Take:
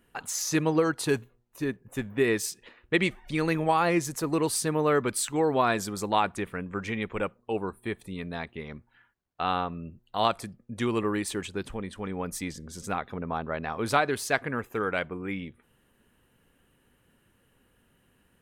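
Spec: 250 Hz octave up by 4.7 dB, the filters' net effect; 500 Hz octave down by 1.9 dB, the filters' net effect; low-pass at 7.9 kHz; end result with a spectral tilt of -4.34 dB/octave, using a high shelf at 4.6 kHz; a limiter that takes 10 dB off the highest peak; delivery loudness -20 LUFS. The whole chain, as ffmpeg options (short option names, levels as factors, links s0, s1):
-af "lowpass=7900,equalizer=f=250:t=o:g=8.5,equalizer=f=500:t=o:g=-5.5,highshelf=f=4600:g=7.5,volume=2.82,alimiter=limit=0.422:level=0:latency=1"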